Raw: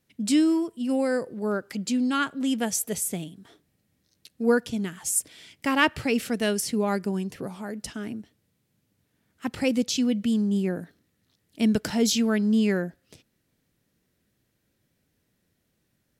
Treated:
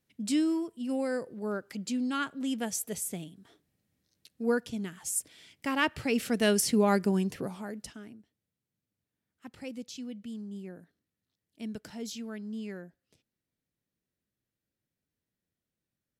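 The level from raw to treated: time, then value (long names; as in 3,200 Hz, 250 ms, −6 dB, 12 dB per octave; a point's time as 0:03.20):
0:05.90 −6.5 dB
0:06.55 +1 dB
0:07.27 +1 dB
0:07.79 −6 dB
0:08.18 −16.5 dB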